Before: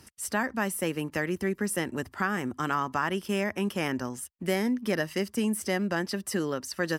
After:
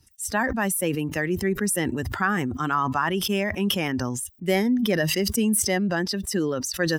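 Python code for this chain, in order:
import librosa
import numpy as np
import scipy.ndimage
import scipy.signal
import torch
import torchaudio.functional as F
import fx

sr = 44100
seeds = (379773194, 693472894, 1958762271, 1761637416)

y = fx.bin_expand(x, sr, power=1.5)
y = fx.sustainer(y, sr, db_per_s=25.0)
y = y * 10.0 ** (6.0 / 20.0)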